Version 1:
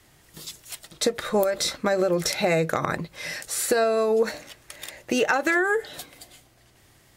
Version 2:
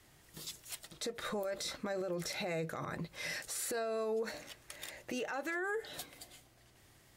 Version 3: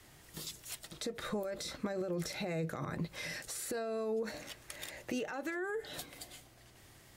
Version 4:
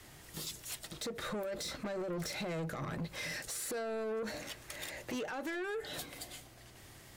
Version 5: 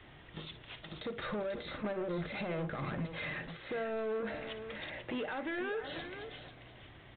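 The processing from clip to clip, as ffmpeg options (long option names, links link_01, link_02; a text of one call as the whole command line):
ffmpeg -i in.wav -af "acompressor=threshold=-26dB:ratio=3,alimiter=limit=-23.5dB:level=0:latency=1:release=13,volume=-6.5dB" out.wav
ffmpeg -i in.wav -filter_complex "[0:a]acrossover=split=360[link_01][link_02];[link_02]acompressor=threshold=-47dB:ratio=2.5[link_03];[link_01][link_03]amix=inputs=2:normalize=0,volume=4.5dB" out.wav
ffmpeg -i in.wav -af "asoftclip=type=tanh:threshold=-38.5dB,volume=4dB" out.wav
ffmpeg -i in.wav -filter_complex "[0:a]asplit=2[link_01][link_02];[link_02]aecho=0:1:57|490:0.211|0.335[link_03];[link_01][link_03]amix=inputs=2:normalize=0,aresample=8000,aresample=44100,volume=1dB" out.wav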